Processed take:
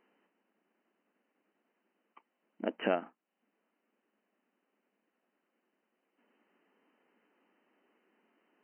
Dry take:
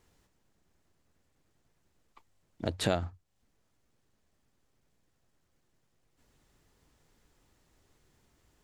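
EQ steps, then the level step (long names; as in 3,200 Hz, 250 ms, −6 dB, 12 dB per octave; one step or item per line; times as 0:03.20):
linear-phase brick-wall band-pass 190–3,100 Hz
0.0 dB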